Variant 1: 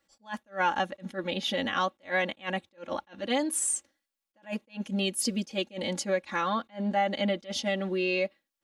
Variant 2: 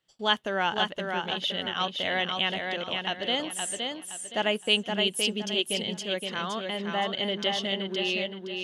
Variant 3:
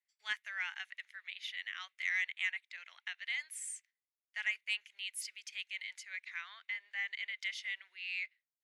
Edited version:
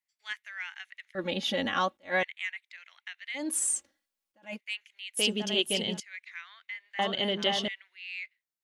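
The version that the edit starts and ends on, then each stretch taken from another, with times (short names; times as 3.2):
3
1.15–2.23 from 1
3.42–4.53 from 1, crossfade 0.16 s
5.17–6 from 2
6.99–7.68 from 2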